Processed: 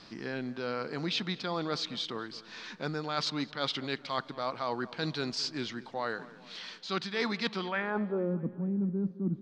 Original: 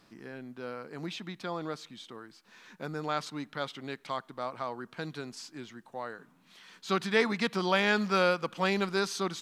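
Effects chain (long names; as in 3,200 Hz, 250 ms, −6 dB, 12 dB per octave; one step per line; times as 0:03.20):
low-pass filter sweep 4,700 Hz → 230 Hz, 0:07.51–0:08.34
reversed playback
downward compressor 10 to 1, threshold −36 dBFS, peak gain reduction 18 dB
reversed playback
feedback echo with a low-pass in the loop 216 ms, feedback 57%, low-pass 2,700 Hz, level −18 dB
level +7.5 dB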